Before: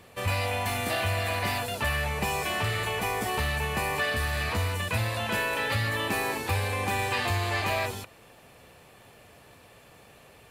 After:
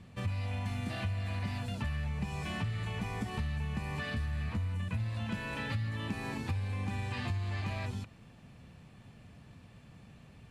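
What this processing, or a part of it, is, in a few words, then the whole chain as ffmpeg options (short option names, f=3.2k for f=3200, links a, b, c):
jukebox: -filter_complex "[0:a]asettb=1/sr,asplit=3[a][b][c];[a]atrim=end=4.264[d];[b]atrim=start=4.26:end=5,asetpts=PTS-STARTPTS,afade=t=in:d=0.004:c=qsin,afade=t=out:st=0.736:d=0.004:c=qsin,equalizer=f=4.8k:w=1.3:g=-5[e];[c]atrim=start=4.996[f];[d][e]acrossfade=d=0.004:c1=hsin:c2=qsin[g];[g][f]acrossfade=d=0.004:c1=qsin:c2=hsin,lowpass=7.3k,lowshelf=f=300:t=q:w=1.5:g=12,acompressor=threshold=-25dB:ratio=4,volume=-8dB"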